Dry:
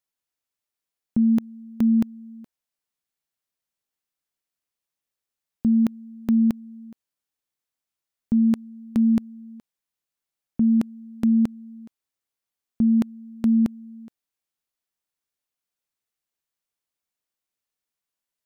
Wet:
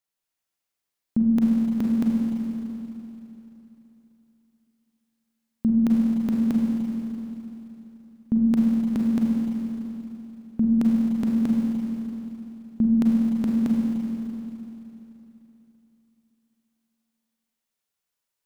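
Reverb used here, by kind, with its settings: Schroeder reverb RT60 3.3 s, combs from 33 ms, DRR -3 dB; gain -1 dB

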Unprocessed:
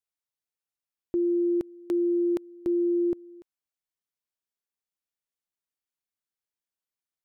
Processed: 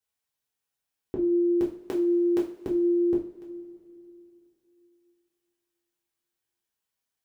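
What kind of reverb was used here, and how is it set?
two-slope reverb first 0.37 s, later 3 s, from -22 dB, DRR -4.5 dB; gain +1 dB

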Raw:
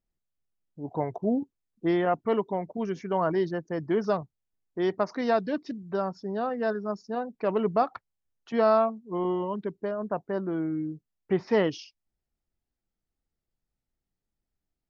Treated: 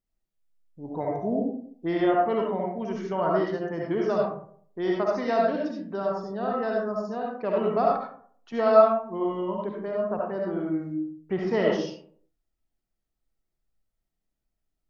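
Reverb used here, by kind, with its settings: digital reverb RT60 0.57 s, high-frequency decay 0.45×, pre-delay 30 ms, DRR -2.5 dB; gain -3 dB

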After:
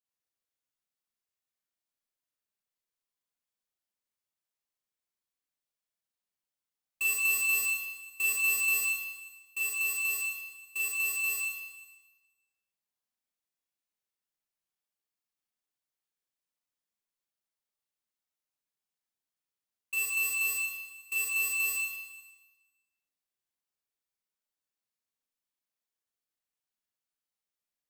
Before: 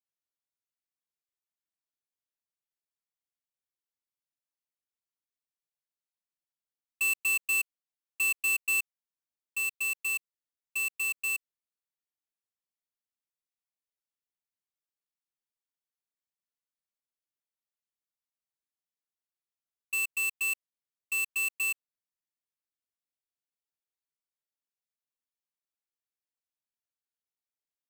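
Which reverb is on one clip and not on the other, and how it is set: Schroeder reverb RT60 1.2 s, combs from 30 ms, DRR -4 dB; gain -3.5 dB

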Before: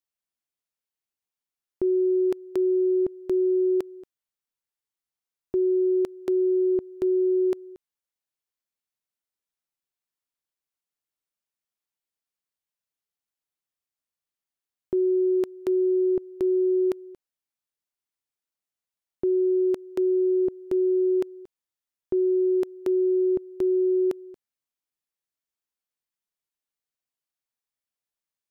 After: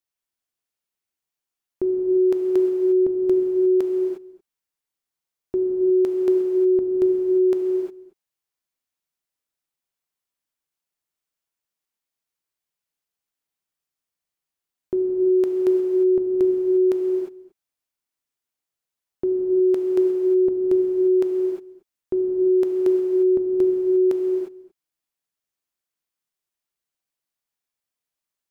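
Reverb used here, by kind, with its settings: non-linear reverb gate 0.38 s flat, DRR 2 dB; gain +1.5 dB

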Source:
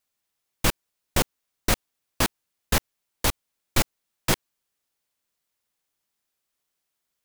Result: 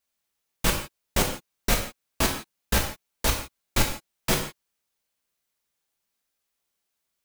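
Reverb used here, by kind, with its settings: non-linear reverb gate 0.19 s falling, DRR 0.5 dB; gain -2.5 dB

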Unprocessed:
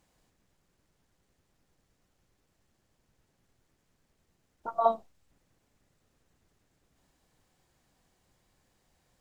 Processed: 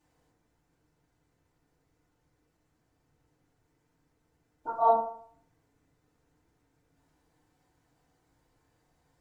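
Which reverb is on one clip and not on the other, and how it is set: FDN reverb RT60 0.58 s, low-frequency decay 0.85×, high-frequency decay 0.3×, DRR -8.5 dB; gain -9 dB

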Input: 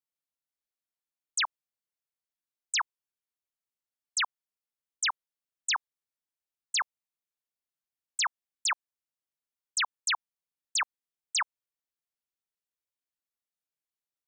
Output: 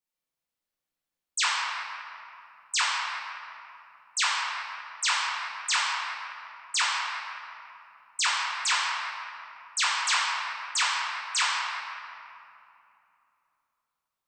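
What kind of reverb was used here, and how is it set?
shoebox room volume 120 m³, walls hard, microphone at 0.98 m; gain -1.5 dB

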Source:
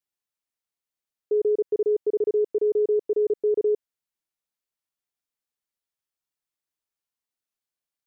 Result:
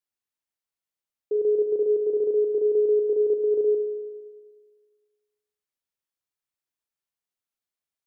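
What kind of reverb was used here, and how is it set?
spring tank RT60 1.6 s, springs 38/51 ms, chirp 70 ms, DRR 5.5 dB; gain -2.5 dB

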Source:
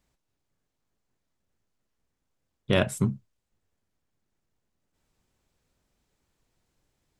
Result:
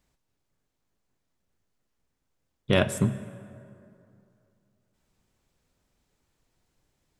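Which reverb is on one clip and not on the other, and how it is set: plate-style reverb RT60 2.6 s, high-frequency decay 0.55×, DRR 13 dB; gain +1 dB

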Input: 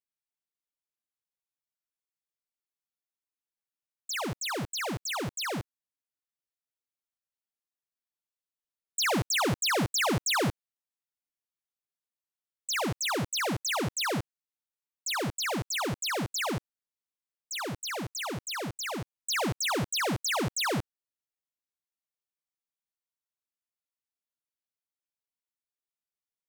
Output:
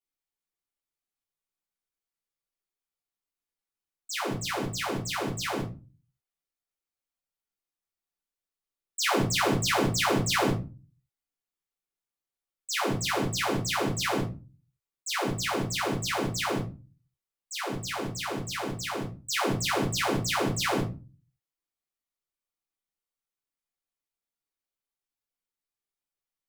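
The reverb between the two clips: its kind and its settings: shoebox room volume 130 m³, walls furnished, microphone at 3.2 m; gain -6 dB

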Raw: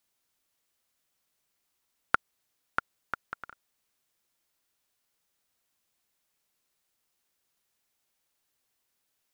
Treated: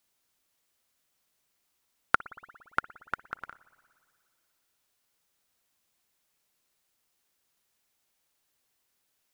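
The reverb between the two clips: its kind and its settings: spring tank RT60 2.1 s, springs 57 ms, chirp 55 ms, DRR 18 dB; gain +2 dB

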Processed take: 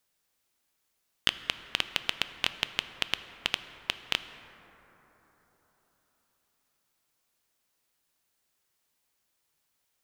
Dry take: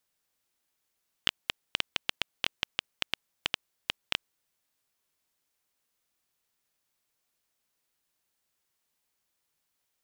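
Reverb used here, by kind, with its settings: plate-style reverb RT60 4.4 s, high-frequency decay 0.3×, DRR 10.5 dB; gain +2.5 dB

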